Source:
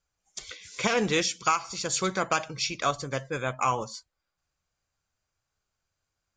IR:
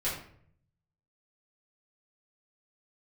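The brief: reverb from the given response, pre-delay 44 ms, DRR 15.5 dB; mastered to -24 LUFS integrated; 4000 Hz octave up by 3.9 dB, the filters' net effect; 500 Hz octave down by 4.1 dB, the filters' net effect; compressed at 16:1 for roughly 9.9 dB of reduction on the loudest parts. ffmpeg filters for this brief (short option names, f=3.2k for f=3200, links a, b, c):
-filter_complex "[0:a]equalizer=f=500:t=o:g=-5,equalizer=f=4k:t=o:g=5,acompressor=threshold=-30dB:ratio=16,asplit=2[a][b];[1:a]atrim=start_sample=2205,adelay=44[c];[b][c]afir=irnorm=-1:irlink=0,volume=-22dB[d];[a][d]amix=inputs=2:normalize=0,volume=11dB"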